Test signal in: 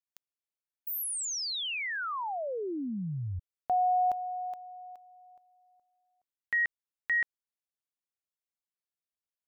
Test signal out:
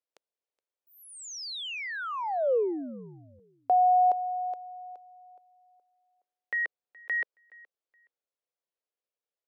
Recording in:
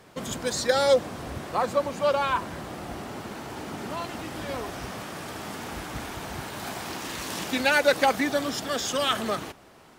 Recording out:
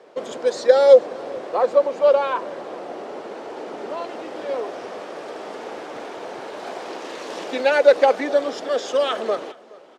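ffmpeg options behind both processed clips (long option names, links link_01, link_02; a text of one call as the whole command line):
ffmpeg -i in.wav -filter_complex "[0:a]highpass=320,lowpass=5700,equalizer=frequency=490:width=1.1:gain=14,asplit=2[link_01][link_02];[link_02]aecho=0:1:421|842:0.0708|0.0149[link_03];[link_01][link_03]amix=inputs=2:normalize=0,volume=-2.5dB" out.wav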